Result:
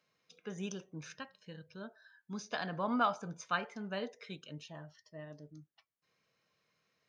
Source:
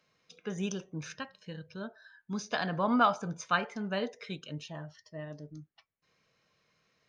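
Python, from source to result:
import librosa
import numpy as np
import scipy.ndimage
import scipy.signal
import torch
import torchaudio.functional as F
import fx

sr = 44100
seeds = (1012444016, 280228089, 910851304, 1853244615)

y = fx.low_shelf(x, sr, hz=64.0, db=-10.5)
y = y * 10.0 ** (-5.5 / 20.0)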